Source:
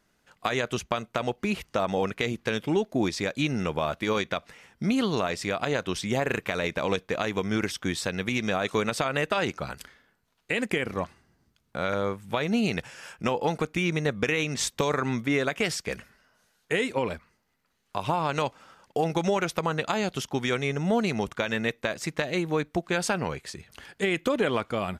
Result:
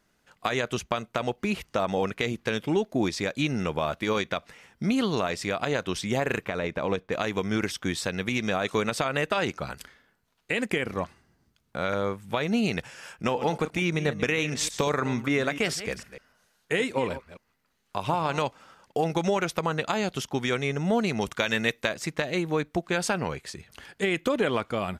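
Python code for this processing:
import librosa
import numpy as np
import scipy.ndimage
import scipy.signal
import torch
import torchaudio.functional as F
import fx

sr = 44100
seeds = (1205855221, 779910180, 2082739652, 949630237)

y = fx.high_shelf(x, sr, hz=2800.0, db=-11.0, at=(6.45, 7.12))
y = fx.reverse_delay(y, sr, ms=149, wet_db=-12.5, at=(13.05, 18.39))
y = fx.high_shelf(y, sr, hz=2200.0, db=7.5, at=(21.21, 21.89))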